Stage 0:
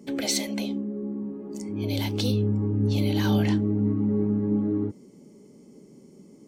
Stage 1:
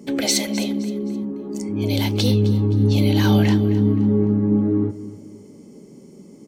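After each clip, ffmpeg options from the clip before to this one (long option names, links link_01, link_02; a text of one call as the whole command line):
ffmpeg -i in.wav -af "aecho=1:1:261|522|783:0.168|0.0621|0.023,volume=6.5dB" out.wav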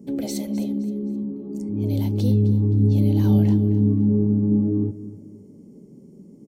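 ffmpeg -i in.wav -af "firequalizer=gain_entry='entry(180,0);entry(320,-4);entry(1500,-20);entry(13000,-8)':delay=0.05:min_phase=1" out.wav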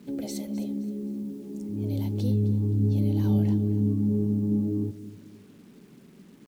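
ffmpeg -i in.wav -af "acrusher=bits=8:mix=0:aa=0.000001,volume=-6dB" out.wav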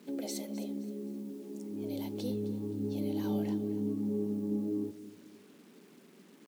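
ffmpeg -i in.wav -af "highpass=310,volume=-1dB" out.wav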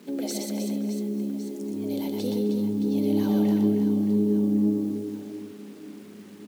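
ffmpeg -i in.wav -af "aecho=1:1:120|312|619.2|1111|1897:0.631|0.398|0.251|0.158|0.1,volume=6.5dB" out.wav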